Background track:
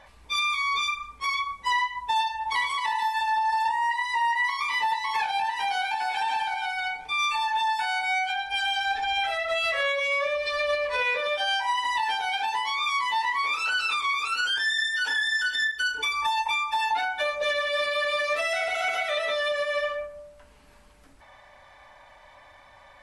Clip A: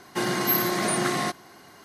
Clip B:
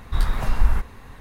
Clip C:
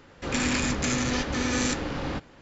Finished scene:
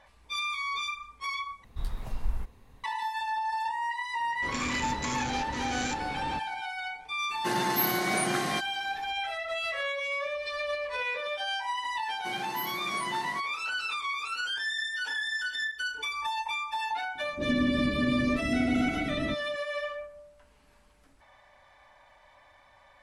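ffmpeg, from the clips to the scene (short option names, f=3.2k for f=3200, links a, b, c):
-filter_complex "[3:a]asplit=2[a][b];[1:a]asplit=2[c][d];[0:a]volume=-6.5dB[e];[2:a]equalizer=f=1.5k:t=o:w=1:g=-7.5[f];[b]lowpass=f=280:t=q:w=2.5[g];[e]asplit=2[h][i];[h]atrim=end=1.644[j];[f]atrim=end=1.2,asetpts=PTS-STARTPTS,volume=-12.5dB[k];[i]atrim=start=2.836[l];[a]atrim=end=2.41,asetpts=PTS-STARTPTS,volume=-7.5dB,afade=t=in:d=0.004:c=hsin,afade=t=out:st=2.406:d=0.004:c=hsin,adelay=4200[m];[c]atrim=end=1.84,asetpts=PTS-STARTPTS,volume=-4.5dB,afade=t=in:d=0.02,afade=t=out:st=1.82:d=0.02,adelay=7290[n];[d]atrim=end=1.84,asetpts=PTS-STARTPTS,volume=-15dB,afade=t=in:d=0.004:c=hsin,afade=t=out:st=1.836:d=0.004:c=hsin,adelay=12090[o];[g]atrim=end=2.41,asetpts=PTS-STARTPTS,volume=-5dB,afade=t=in:d=0.004:c=hsin,afade=t=out:st=2.406:d=0.004:c=hsin,adelay=17150[p];[j][k]acrossfade=d=0.004:c1=hsin:c2=hsin[q];[q][l]acrossfade=d=0.004:c1=hsin:c2=hsin[r];[r][m][n][o][p]amix=inputs=5:normalize=0"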